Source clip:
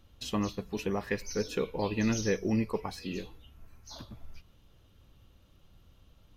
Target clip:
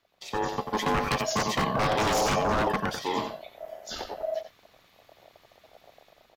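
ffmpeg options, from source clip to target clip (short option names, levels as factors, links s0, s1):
-filter_complex "[0:a]equalizer=f=9200:w=1.3:g=-5,asplit=2[s0][s1];[s1]aecho=0:1:90:0.376[s2];[s0][s2]amix=inputs=2:normalize=0,asettb=1/sr,asplit=3[s3][s4][s5];[s3]atrim=end=1.464[s6];[s4]atrim=start=1.46:end=2.68,asetpts=PTS-STARTPTS,afade=t=in:d=0.004:c=qsin,afade=t=out:st=1.216:d=0.004:c=qsin,asubboost=boost=9.5:cutoff=160[s7];[s5]atrim=start=2.676[s8];[s6][s7]acrossfade=d=0.004:c1=hsin:c2=qsin[s9];[s9][s8]acrossfade=d=0.004:c1=qsin:c2=hsin,acrossover=split=450|2200[s10][s11][s12];[s10]aeval=exprs='sgn(val(0))*max(abs(val(0))-0.0015,0)':c=same[s13];[s13][s11][s12]amix=inputs=3:normalize=0,dynaudnorm=f=230:g=5:m=4.47,aeval=exprs='0.15*(abs(mod(val(0)/0.15+3,4)-2)-1)':c=same,aeval=exprs='val(0)*sin(2*PI*640*n/s)':c=same"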